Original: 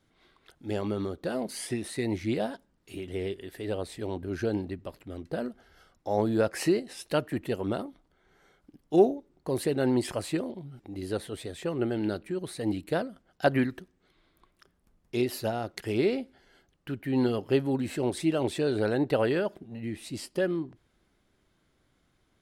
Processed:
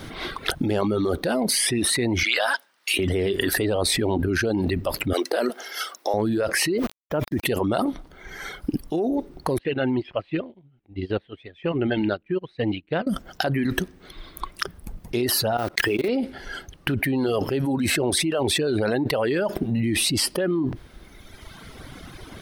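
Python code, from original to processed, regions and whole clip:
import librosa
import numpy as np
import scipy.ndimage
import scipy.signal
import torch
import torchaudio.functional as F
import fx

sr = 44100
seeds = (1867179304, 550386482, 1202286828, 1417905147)

y = fx.chain(x, sr, fx.highpass(hz=1300.0, slope=12),
    fx.high_shelf(hz=10000.0, db=-6.5), at=(2.23, 2.99))
y = fx.chain(y, sr, fx.highpass(hz=330.0, slope=24),
    fx.tilt_eq(slope=1.5), at=(5.13, 6.14))
y = fx.chain(y, sr, fx.lowpass(hz=1400.0, slope=12),
    fx.sample_gate(floor_db=-44.0), at=(6.78, 7.44))
y = fx.chain(y, sr, fx.ladder_lowpass(hz=3400.0, resonance_pct=45),
    fx.low_shelf(hz=200.0, db=5.0),
    fx.upward_expand(threshold_db=-49.0, expansion=2.5), at=(9.58, 13.07))
y = fx.chain(y, sr, fx.block_float(bits=5),
    fx.peak_eq(hz=1400.0, db=4.5, octaves=2.5),
    fx.level_steps(step_db=23), at=(15.57, 16.09))
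y = fx.dereverb_blind(y, sr, rt60_s=1.4)
y = fx.peak_eq(y, sr, hz=7200.0, db=-8.5, octaves=0.2)
y = fx.env_flatten(y, sr, amount_pct=100)
y = y * librosa.db_to_amplitude(-7.5)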